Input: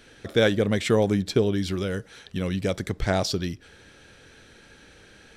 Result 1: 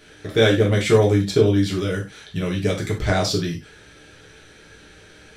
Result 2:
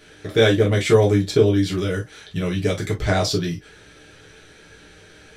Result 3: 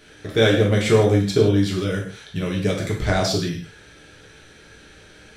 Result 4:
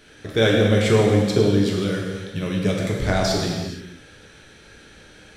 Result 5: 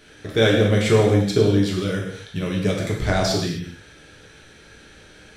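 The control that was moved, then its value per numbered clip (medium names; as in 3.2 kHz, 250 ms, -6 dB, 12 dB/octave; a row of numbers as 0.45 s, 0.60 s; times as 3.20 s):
gated-style reverb, gate: 120 ms, 80 ms, 190 ms, 510 ms, 290 ms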